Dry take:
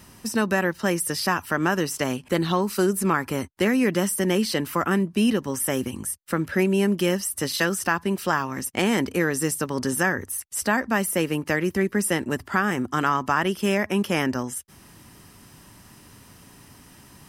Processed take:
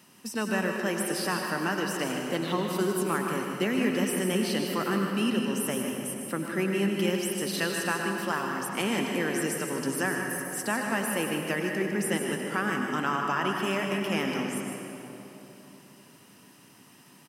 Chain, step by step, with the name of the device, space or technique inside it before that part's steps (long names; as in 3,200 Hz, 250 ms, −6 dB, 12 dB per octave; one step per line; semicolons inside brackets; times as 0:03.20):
PA in a hall (high-pass filter 150 Hz 24 dB per octave; parametric band 2,800 Hz +5 dB 0.3 octaves; single-tap delay 154 ms −9 dB; convolution reverb RT60 3.3 s, pre-delay 85 ms, DRR 2 dB)
level −7.5 dB